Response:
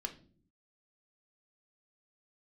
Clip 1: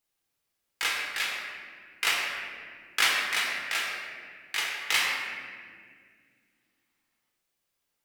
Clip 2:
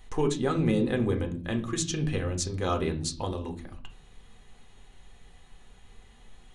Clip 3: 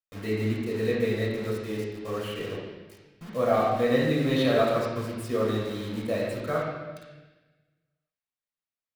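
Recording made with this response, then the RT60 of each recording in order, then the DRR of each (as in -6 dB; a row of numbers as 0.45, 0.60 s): 2; 2.0 s, not exponential, 1.2 s; -3.5, 4.0, -6.5 dB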